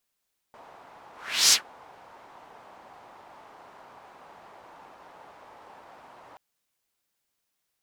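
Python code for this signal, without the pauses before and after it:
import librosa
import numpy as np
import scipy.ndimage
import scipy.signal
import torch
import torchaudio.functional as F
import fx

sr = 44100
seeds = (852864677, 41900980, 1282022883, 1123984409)

y = fx.whoosh(sr, seeds[0], length_s=5.83, peak_s=0.98, rise_s=0.41, fall_s=0.12, ends_hz=860.0, peak_hz=5900.0, q=2.1, swell_db=33.0)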